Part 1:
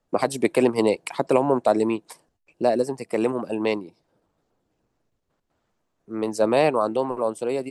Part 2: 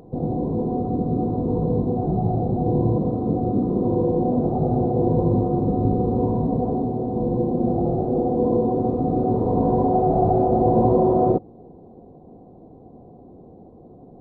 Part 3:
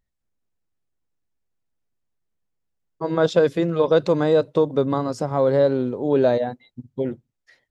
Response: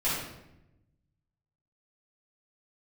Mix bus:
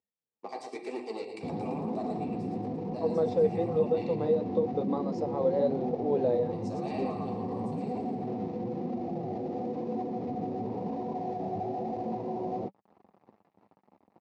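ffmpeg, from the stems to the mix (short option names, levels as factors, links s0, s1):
-filter_complex "[0:a]aemphasis=mode=production:type=bsi,aecho=1:1:2.6:0.5,adelay=300,volume=0.211,asplit=3[s0][s1][s2];[s1]volume=0.15[s3];[s2]volume=0.335[s4];[1:a]alimiter=limit=0.211:level=0:latency=1:release=316,adelay=1300,volume=0.891[s5];[2:a]equalizer=f=480:w=6.6:g=14.5,alimiter=limit=0.447:level=0:latency=1:release=261,volume=0.335[s6];[s0][s5]amix=inputs=2:normalize=0,aeval=exprs='sgn(val(0))*max(abs(val(0))-0.00841,0)':c=same,alimiter=level_in=1.06:limit=0.0631:level=0:latency=1:release=21,volume=0.944,volume=1[s7];[3:a]atrim=start_sample=2205[s8];[s3][s8]afir=irnorm=-1:irlink=0[s9];[s4]aecho=0:1:113|226|339|452|565|678|791|904|1017:1|0.58|0.336|0.195|0.113|0.0656|0.0381|0.0221|0.0128[s10];[s6][s7][s9][s10]amix=inputs=4:normalize=0,flanger=delay=2.6:depth=9.1:regen=-31:speed=1:shape=triangular,highpass=f=100:w=0.5412,highpass=f=100:w=1.3066,equalizer=f=130:t=q:w=4:g=-6,equalizer=f=200:t=q:w=4:g=6,equalizer=f=820:t=q:w=4:g=6,equalizer=f=1500:t=q:w=4:g=-10,equalizer=f=3200:t=q:w=4:g=-6,lowpass=f=5700:w=0.5412,lowpass=f=5700:w=1.3066"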